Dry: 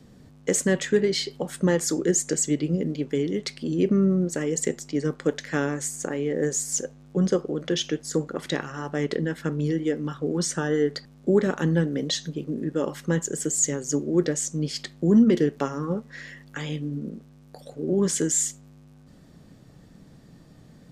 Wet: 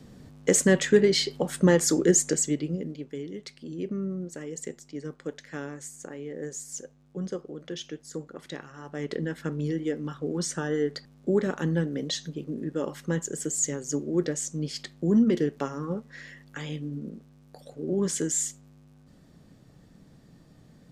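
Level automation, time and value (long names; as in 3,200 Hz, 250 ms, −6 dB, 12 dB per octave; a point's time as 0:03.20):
0:02.16 +2 dB
0:03.11 −11 dB
0:08.77 −11 dB
0:09.21 −4 dB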